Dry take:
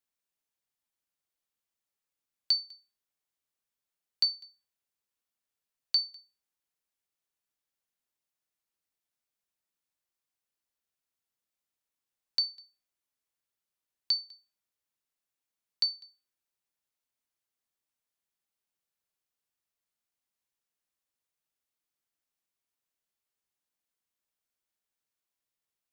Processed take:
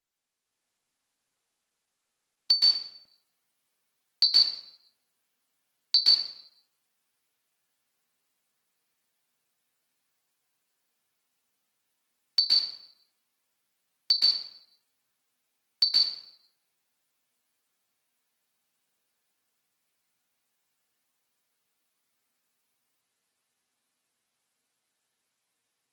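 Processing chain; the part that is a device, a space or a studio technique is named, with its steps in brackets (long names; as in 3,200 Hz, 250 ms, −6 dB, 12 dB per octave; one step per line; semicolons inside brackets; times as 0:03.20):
far-field microphone of a smart speaker (convolution reverb RT60 0.75 s, pre-delay 117 ms, DRR −7 dB; high-pass filter 110 Hz 24 dB per octave; automatic gain control gain up to 6.5 dB; level −2.5 dB; Opus 16 kbit/s 48,000 Hz)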